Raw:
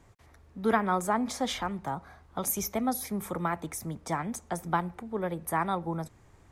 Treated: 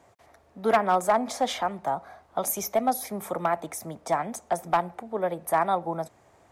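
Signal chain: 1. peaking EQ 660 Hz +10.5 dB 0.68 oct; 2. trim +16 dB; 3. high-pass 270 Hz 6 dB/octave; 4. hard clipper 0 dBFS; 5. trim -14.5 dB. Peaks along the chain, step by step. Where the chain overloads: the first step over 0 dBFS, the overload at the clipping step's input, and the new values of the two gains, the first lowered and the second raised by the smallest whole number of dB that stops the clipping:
-6.5 dBFS, +9.5 dBFS, +8.5 dBFS, 0.0 dBFS, -14.5 dBFS; step 2, 8.5 dB; step 2 +7 dB, step 5 -5.5 dB

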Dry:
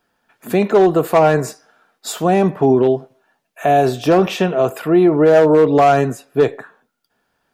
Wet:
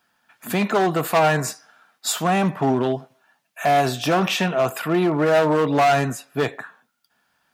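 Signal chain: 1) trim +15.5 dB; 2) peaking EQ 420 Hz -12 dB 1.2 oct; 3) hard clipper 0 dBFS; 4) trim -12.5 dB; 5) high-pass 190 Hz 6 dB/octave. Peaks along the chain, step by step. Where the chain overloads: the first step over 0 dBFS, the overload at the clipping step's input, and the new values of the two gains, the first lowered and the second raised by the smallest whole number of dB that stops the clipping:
+11.5 dBFS, +9.5 dBFS, 0.0 dBFS, -12.5 dBFS, -8.5 dBFS; step 1, 9.5 dB; step 1 +5.5 dB, step 4 -2.5 dB

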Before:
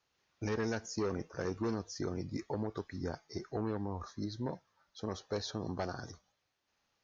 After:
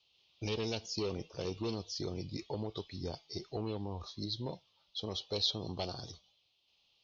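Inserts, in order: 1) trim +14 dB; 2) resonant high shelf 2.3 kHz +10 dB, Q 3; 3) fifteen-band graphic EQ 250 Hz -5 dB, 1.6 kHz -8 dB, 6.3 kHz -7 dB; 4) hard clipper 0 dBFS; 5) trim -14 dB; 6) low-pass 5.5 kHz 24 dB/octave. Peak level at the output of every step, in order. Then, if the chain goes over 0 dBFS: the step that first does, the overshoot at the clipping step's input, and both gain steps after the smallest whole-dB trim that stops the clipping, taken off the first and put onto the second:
-11.0 dBFS, -1.5 dBFS, -4.0 dBFS, -4.0 dBFS, -18.0 dBFS, -18.5 dBFS; nothing clips

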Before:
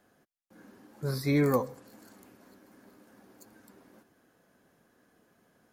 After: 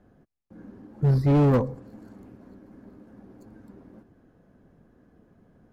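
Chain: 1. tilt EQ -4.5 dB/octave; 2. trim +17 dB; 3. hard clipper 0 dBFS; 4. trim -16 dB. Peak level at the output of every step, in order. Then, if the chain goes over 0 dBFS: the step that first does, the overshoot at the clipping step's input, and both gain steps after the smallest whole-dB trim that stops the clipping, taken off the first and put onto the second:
-8.5 dBFS, +8.5 dBFS, 0.0 dBFS, -16.0 dBFS; step 2, 8.5 dB; step 2 +8 dB, step 4 -7 dB

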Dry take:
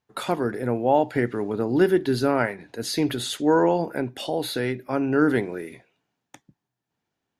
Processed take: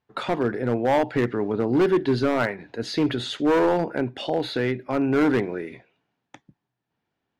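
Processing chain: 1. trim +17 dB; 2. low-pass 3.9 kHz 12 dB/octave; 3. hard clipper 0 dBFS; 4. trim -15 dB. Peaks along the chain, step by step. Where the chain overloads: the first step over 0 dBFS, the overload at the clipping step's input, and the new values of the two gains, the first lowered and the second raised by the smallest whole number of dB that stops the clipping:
+9.5 dBFS, +9.5 dBFS, 0.0 dBFS, -15.0 dBFS; step 1, 9.5 dB; step 1 +7 dB, step 4 -5 dB

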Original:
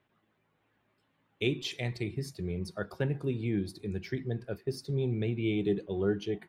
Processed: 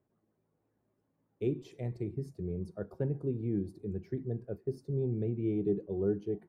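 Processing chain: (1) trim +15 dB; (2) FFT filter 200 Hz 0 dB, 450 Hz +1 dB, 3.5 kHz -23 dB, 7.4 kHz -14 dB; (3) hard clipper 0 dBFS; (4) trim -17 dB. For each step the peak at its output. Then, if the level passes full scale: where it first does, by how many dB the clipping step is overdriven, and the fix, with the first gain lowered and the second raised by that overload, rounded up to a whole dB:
-0.5 dBFS, -2.5 dBFS, -2.5 dBFS, -19.5 dBFS; nothing clips

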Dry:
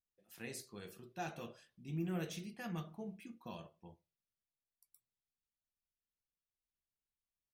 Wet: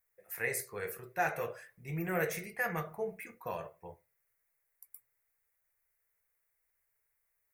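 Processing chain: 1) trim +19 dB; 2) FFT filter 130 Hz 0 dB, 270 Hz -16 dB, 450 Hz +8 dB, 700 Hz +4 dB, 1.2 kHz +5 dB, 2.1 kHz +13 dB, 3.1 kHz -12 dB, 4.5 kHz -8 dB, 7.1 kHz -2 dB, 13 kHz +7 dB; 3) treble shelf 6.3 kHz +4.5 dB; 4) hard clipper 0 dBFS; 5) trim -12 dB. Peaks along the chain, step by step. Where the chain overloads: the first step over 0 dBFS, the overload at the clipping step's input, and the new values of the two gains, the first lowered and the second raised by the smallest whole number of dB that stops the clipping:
-11.0 dBFS, -5.5 dBFS, -5.0 dBFS, -5.0 dBFS, -17.0 dBFS; nothing clips

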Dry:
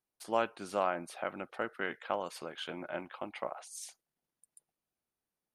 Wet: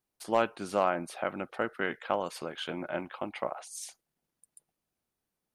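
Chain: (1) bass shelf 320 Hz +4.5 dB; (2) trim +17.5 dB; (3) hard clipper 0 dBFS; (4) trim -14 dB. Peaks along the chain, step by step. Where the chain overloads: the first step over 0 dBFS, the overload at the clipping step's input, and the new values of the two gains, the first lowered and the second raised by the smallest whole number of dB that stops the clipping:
-14.0 dBFS, +3.5 dBFS, 0.0 dBFS, -14.0 dBFS; step 2, 3.5 dB; step 2 +13.5 dB, step 4 -10 dB

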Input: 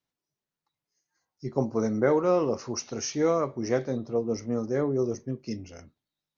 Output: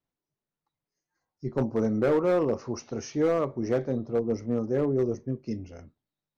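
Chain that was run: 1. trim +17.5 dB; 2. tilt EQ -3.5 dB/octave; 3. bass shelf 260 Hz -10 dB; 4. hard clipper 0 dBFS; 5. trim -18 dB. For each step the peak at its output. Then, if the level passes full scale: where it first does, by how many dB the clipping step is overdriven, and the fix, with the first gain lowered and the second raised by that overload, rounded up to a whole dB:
+6.0 dBFS, +11.5 dBFS, +7.5 dBFS, 0.0 dBFS, -18.0 dBFS; step 1, 7.5 dB; step 1 +9.5 dB, step 5 -10 dB

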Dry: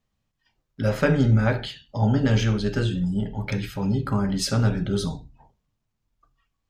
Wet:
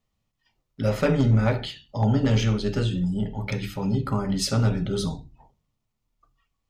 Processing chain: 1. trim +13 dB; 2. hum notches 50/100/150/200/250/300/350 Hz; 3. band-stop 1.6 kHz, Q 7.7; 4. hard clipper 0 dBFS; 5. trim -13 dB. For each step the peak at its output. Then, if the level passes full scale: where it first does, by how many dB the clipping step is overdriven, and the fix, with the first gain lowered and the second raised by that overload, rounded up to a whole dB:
+7.5 dBFS, +6.5 dBFS, +6.0 dBFS, 0.0 dBFS, -13.0 dBFS; step 1, 6.0 dB; step 1 +7 dB, step 5 -7 dB

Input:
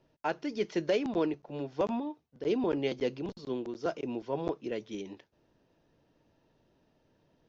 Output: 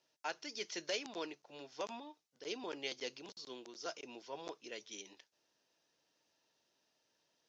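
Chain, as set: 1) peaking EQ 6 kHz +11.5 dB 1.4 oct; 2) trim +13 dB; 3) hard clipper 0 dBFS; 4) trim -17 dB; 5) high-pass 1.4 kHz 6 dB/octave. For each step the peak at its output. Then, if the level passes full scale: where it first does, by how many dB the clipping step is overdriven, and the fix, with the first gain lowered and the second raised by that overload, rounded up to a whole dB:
-16.5 dBFS, -3.5 dBFS, -3.5 dBFS, -20.5 dBFS, -23.5 dBFS; nothing clips

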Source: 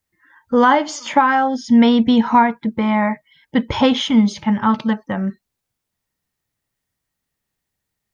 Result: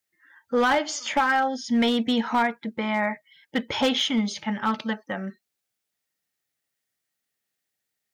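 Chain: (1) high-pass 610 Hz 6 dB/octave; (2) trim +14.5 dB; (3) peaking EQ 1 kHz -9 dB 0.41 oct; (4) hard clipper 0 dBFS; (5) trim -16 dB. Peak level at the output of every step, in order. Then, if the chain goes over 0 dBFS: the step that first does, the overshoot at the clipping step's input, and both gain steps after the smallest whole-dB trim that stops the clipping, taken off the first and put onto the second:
-4.0 dBFS, +10.5 dBFS, +8.0 dBFS, 0.0 dBFS, -16.0 dBFS; step 2, 8.0 dB; step 2 +6.5 dB, step 5 -8 dB

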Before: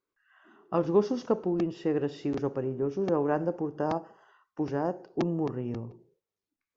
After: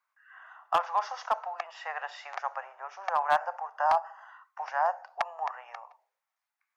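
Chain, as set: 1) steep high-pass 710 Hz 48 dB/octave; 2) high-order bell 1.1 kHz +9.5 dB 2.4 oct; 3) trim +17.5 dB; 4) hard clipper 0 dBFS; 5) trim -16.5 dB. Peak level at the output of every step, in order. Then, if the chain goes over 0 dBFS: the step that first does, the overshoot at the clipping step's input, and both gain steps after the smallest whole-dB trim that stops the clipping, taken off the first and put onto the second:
-18.0 dBFS, -8.5 dBFS, +9.0 dBFS, 0.0 dBFS, -16.5 dBFS; step 3, 9.0 dB; step 3 +8.5 dB, step 5 -7.5 dB

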